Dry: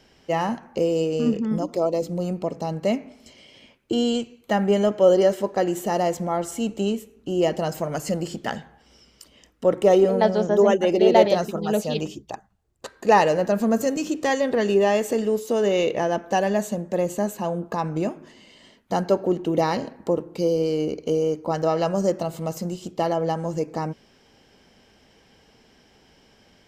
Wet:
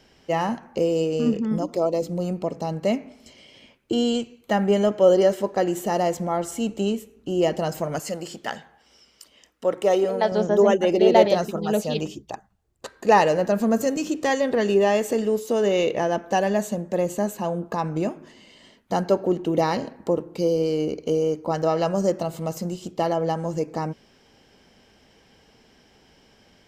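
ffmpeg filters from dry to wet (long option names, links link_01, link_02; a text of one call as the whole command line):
ffmpeg -i in.wav -filter_complex "[0:a]asettb=1/sr,asplit=3[link_01][link_02][link_03];[link_01]atrim=end=7.994[link_04];[link_02]atrim=start=7.99:end=10.32,asetpts=PTS-STARTPTS,afade=type=in:duration=0.004:curve=qsin,afade=type=out:start_time=2.326:duration=0.004:curve=qsin,lowshelf=frequency=310:gain=-12[link_05];[link_03]atrim=start=10.316[link_06];[link_04][link_05]acrossfade=duration=0.004:curve1=hsin:curve2=qsin[link_07];[link_07][link_06]acrossfade=duration=0.004:curve1=qsin:curve2=hsin" out.wav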